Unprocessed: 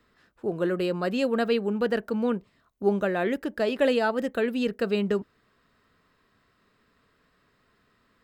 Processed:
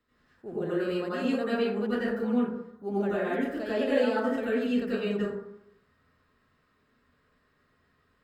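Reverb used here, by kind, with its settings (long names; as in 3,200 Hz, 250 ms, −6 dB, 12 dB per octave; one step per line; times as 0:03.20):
dense smooth reverb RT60 0.75 s, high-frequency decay 0.45×, pre-delay 75 ms, DRR −9 dB
level −12.5 dB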